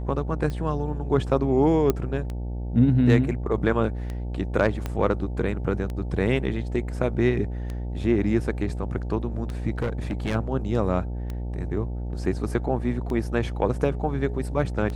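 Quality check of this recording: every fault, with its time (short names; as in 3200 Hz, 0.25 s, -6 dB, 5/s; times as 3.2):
buzz 60 Hz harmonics 15 -30 dBFS
tick 33 1/3 rpm -20 dBFS
1.9 pop -9 dBFS
4.86 pop -15 dBFS
9.78–10.35 clipped -22 dBFS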